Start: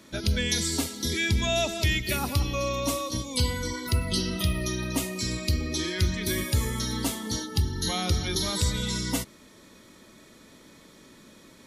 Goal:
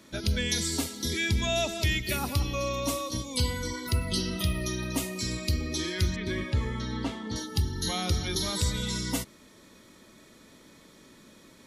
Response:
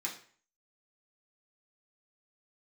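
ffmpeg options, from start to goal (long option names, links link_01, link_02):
-filter_complex "[0:a]asettb=1/sr,asplit=3[link_01][link_02][link_03];[link_01]atrim=end=6.164[link_04];[link_02]atrim=start=6.16:end=7.36,asetpts=PTS-STARTPTS,afade=type=in:duration=0.004:curve=qsin,afade=type=out:start_time=1.196:duration=0.004:curve=qsin,lowpass=3000[link_05];[link_03]atrim=start=7.356[link_06];[link_04][link_05]acrossfade=duration=0.004:curve1=hsin:curve2=qsin[link_07];[link_07][link_06]acrossfade=duration=0.004:curve1=qsin:curve2=hsin,volume=-2dB"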